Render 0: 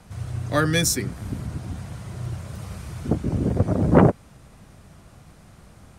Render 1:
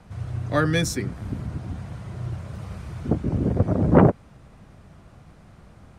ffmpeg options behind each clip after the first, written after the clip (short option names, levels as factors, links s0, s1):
-af "lowpass=f=2700:p=1"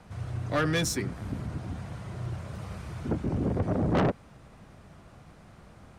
-af "lowshelf=f=210:g=-5,asoftclip=type=tanh:threshold=0.0891"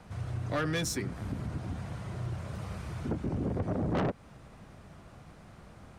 -af "acompressor=threshold=0.0251:ratio=2"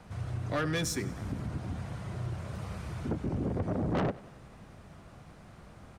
-af "aecho=1:1:96|192|288|384|480:0.106|0.0614|0.0356|0.0207|0.012"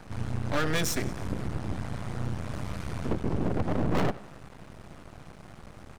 -af "aeval=exprs='max(val(0),0)':c=same,volume=2.51"